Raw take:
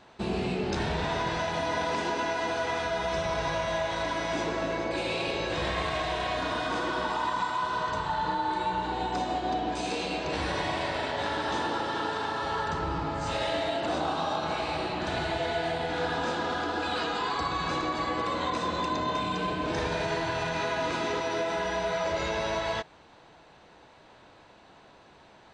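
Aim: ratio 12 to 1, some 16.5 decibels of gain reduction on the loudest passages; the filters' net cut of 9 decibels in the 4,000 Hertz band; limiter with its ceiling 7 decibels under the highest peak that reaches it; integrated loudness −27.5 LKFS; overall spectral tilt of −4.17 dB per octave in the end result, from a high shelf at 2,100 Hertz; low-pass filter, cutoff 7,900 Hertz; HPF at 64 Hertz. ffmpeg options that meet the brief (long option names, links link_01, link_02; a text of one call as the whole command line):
ffmpeg -i in.wav -af "highpass=64,lowpass=7900,highshelf=frequency=2100:gain=-6,equalizer=frequency=4000:width_type=o:gain=-5.5,acompressor=threshold=-44dB:ratio=12,volume=22.5dB,alimiter=limit=-18.5dB:level=0:latency=1" out.wav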